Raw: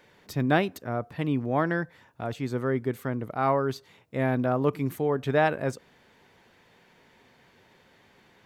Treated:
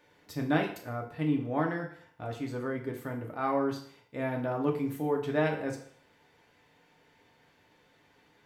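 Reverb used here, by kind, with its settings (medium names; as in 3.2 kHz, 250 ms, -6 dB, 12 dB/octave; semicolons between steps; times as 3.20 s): FDN reverb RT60 0.58 s, low-frequency decay 0.8×, high-frequency decay 0.95×, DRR 0.5 dB; trim -7.5 dB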